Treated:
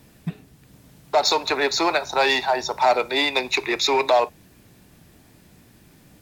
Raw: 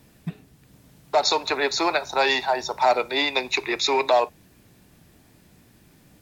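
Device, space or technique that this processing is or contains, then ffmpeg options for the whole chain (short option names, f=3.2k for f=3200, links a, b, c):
parallel distortion: -filter_complex "[0:a]asplit=2[a][b];[b]asoftclip=type=hard:threshold=-23dB,volume=-8.5dB[c];[a][c]amix=inputs=2:normalize=0"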